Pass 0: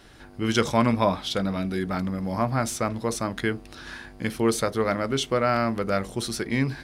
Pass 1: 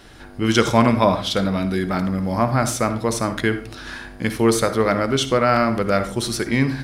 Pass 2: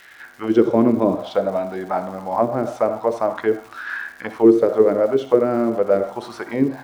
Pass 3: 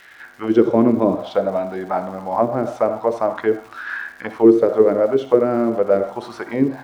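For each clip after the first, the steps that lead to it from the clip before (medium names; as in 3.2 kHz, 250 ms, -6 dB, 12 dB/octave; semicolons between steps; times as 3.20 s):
reverberation RT60 0.40 s, pre-delay 54 ms, DRR 10.5 dB; trim +5.5 dB
auto-wah 340–2000 Hz, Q 3.1, down, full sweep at -13 dBFS; crackle 360 per s -47 dBFS; trim +9 dB
treble shelf 4.9 kHz -4.5 dB; trim +1 dB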